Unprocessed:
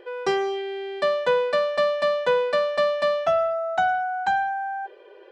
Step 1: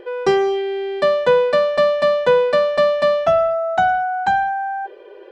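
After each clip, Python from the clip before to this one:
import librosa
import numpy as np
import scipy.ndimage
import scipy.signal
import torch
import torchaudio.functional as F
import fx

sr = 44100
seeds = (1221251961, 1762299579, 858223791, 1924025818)

y = fx.low_shelf(x, sr, hz=440.0, db=8.5)
y = y * librosa.db_to_amplitude(3.5)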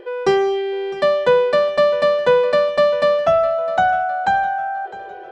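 y = fx.echo_feedback(x, sr, ms=657, feedback_pct=38, wet_db=-17.0)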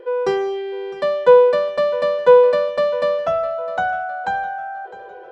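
y = fx.small_body(x, sr, hz=(500.0, 1000.0, 1400.0), ring_ms=45, db=11)
y = y * librosa.db_to_amplitude(-6.0)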